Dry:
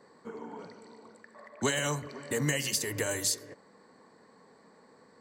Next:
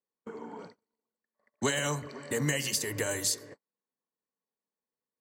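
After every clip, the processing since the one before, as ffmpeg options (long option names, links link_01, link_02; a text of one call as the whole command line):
ffmpeg -i in.wav -af "agate=range=-39dB:threshold=-46dB:ratio=16:detection=peak" out.wav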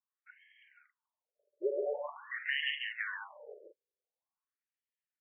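ffmpeg -i in.wav -af "aecho=1:1:55.39|139.9|180.8:0.251|0.562|0.316,afftfilt=real='re*between(b*sr/1024,430*pow(2400/430,0.5+0.5*sin(2*PI*0.46*pts/sr))/1.41,430*pow(2400/430,0.5+0.5*sin(2*PI*0.46*pts/sr))*1.41)':imag='im*between(b*sr/1024,430*pow(2400/430,0.5+0.5*sin(2*PI*0.46*pts/sr))/1.41,430*pow(2400/430,0.5+0.5*sin(2*PI*0.46*pts/sr))*1.41)':win_size=1024:overlap=0.75" out.wav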